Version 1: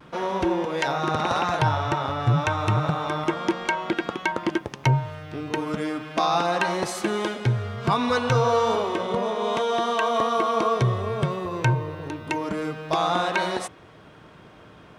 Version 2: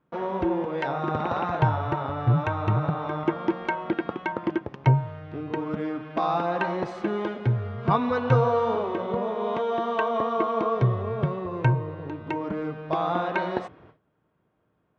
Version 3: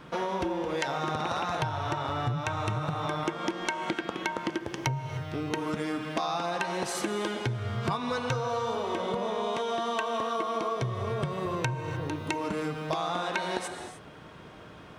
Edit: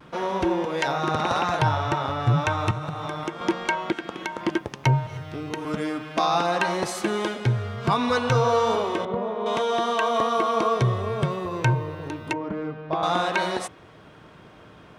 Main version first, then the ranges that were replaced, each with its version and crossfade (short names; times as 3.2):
1
2.71–3.41 from 3
3.92–4.41 from 3
5.07–5.65 from 3
9.05–9.46 from 2
12.33–13.03 from 2